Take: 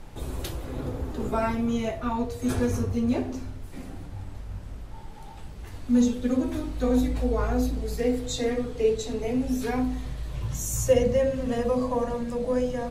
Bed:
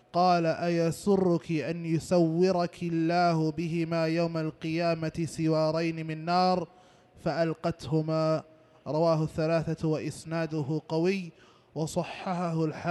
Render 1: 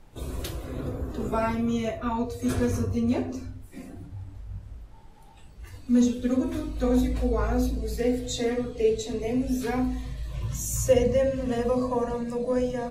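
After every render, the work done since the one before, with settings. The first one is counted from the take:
noise reduction from a noise print 9 dB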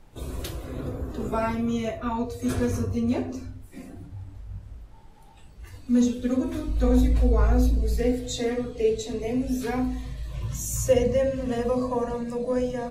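0:06.68–0:08.12: low-shelf EQ 93 Hz +11 dB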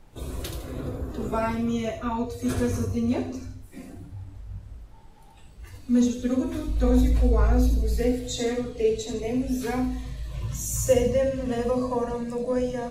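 delay with a high-pass on its return 79 ms, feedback 37%, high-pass 3,400 Hz, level −5.5 dB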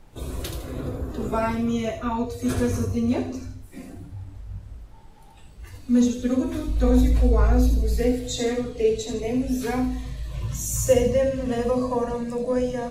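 level +2 dB

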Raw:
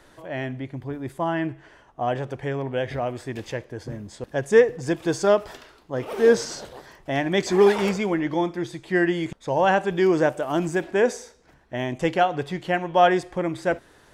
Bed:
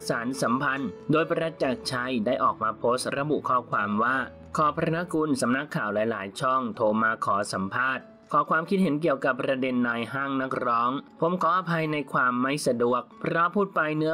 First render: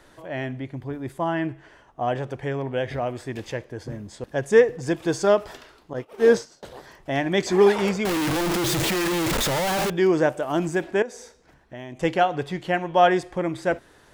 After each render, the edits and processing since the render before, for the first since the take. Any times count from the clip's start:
0:05.93–0:06.63: downward expander −23 dBFS
0:08.05–0:09.90: sign of each sample alone
0:11.02–0:12.03: downward compressor 2.5 to 1, threshold −38 dBFS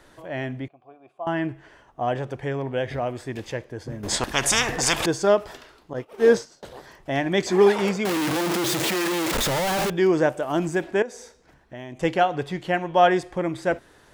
0:00.68–0:01.27: formant filter a
0:04.03–0:05.06: every bin compressed towards the loudest bin 10 to 1
0:07.50–0:09.33: high-pass filter 86 Hz → 260 Hz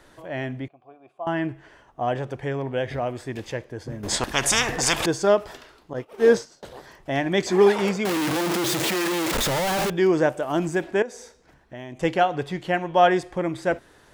no processing that can be heard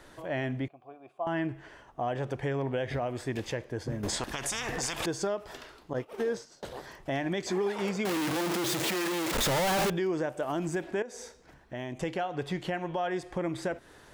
downward compressor 6 to 1, threshold −27 dBFS, peak gain reduction 14.5 dB
brickwall limiter −22 dBFS, peak gain reduction 8 dB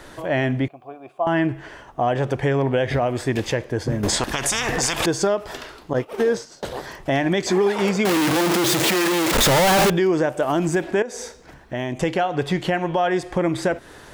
level +11 dB

